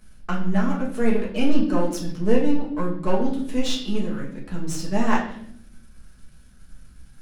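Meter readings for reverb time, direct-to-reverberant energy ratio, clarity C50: 0.65 s, -4.0 dB, 6.5 dB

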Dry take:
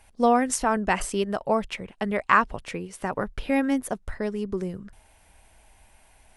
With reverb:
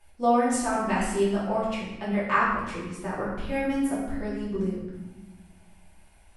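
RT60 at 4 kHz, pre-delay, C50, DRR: 0.85 s, 3 ms, 0.5 dB, -8.5 dB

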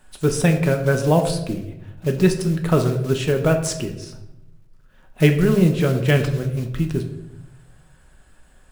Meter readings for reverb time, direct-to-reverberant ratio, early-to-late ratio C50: 0.90 s, 4.0 dB, 9.5 dB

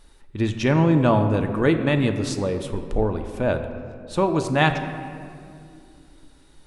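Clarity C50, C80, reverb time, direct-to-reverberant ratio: 8.5 dB, 9.5 dB, 2.4 s, 6.0 dB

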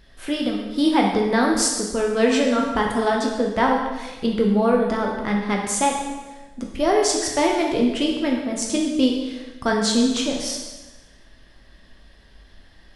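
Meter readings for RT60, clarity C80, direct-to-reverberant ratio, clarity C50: 1.2 s, 5.0 dB, -0.5 dB, 3.0 dB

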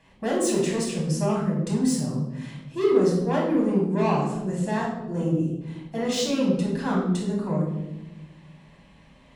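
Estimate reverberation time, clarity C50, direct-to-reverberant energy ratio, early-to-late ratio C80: 1.0 s, 3.0 dB, -4.0 dB, 6.0 dB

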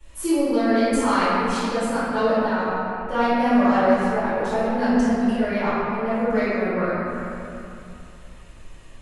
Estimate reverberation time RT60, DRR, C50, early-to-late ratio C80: 2.8 s, -20.0 dB, -5.5 dB, -2.5 dB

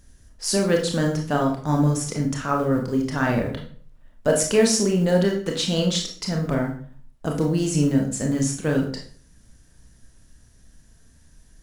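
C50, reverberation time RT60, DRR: 7.0 dB, 0.50 s, 1.0 dB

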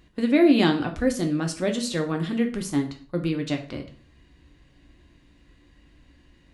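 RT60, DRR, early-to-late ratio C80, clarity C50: 0.45 s, 3.5 dB, 16.0 dB, 12.0 dB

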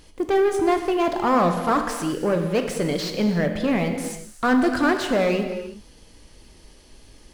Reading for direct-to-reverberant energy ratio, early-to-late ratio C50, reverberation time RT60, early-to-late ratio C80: 5.0 dB, 7.0 dB, not exponential, 8.0 dB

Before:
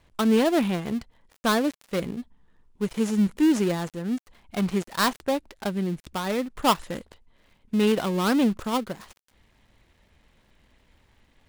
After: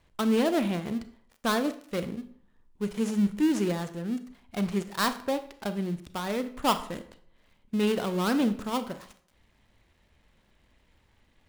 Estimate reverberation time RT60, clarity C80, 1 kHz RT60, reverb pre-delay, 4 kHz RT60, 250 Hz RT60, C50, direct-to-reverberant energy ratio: 0.55 s, 17.0 dB, 0.55 s, 30 ms, 0.45 s, 0.55 s, 13.5 dB, 10.5 dB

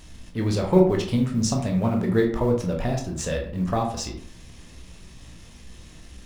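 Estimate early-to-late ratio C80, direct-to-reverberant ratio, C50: 11.0 dB, 1.0 dB, 7.0 dB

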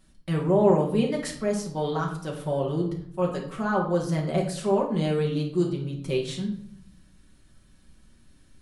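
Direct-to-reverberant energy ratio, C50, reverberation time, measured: -1.5 dB, 7.0 dB, 0.70 s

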